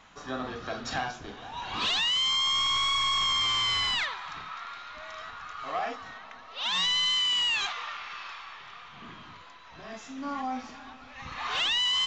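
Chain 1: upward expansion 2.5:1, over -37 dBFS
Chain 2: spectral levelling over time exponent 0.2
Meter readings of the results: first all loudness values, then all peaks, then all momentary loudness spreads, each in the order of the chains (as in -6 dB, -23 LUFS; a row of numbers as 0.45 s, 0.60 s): -26.0 LUFS, -17.0 LUFS; -21.0 dBFS, -5.0 dBFS; 18 LU, 4 LU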